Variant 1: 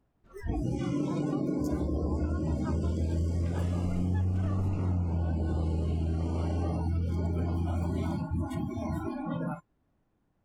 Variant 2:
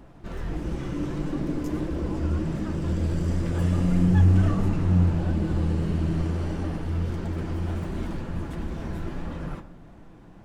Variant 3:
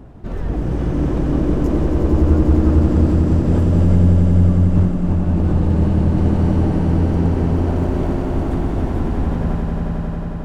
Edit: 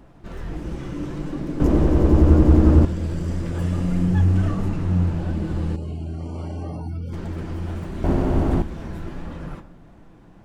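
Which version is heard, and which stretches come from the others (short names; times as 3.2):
2
1.6–2.85 from 3
5.76–7.13 from 1
8.04–8.62 from 3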